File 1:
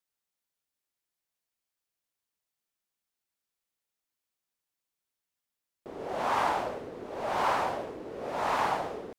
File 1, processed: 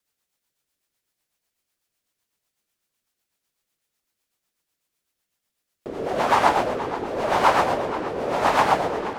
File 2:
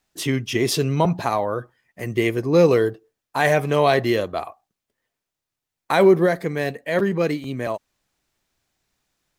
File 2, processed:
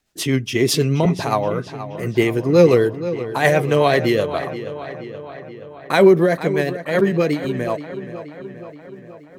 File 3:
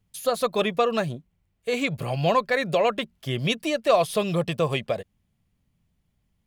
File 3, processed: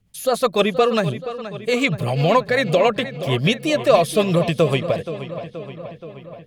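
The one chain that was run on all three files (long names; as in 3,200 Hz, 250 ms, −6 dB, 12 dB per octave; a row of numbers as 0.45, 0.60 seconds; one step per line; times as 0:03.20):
rotating-speaker cabinet horn 8 Hz
on a send: feedback echo with a low-pass in the loop 476 ms, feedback 64%, low-pass 4,800 Hz, level −12.5 dB
on the sum: normalise the peak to −2 dBFS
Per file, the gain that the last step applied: +12.0, +4.5, +8.0 decibels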